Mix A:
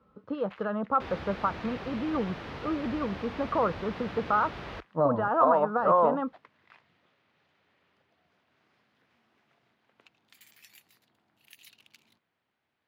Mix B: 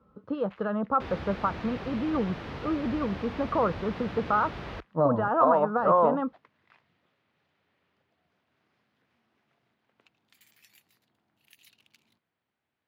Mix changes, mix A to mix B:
first sound −4.5 dB
master: add low-shelf EQ 330 Hz +4 dB

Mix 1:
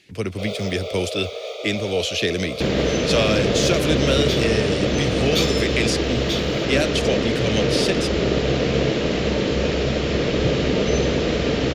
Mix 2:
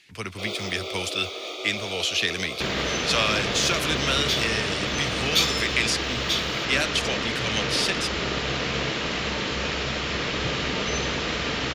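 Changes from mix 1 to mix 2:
first sound: remove Chebyshev high-pass with heavy ripple 420 Hz, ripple 3 dB
master: add low shelf with overshoot 730 Hz −9 dB, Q 1.5

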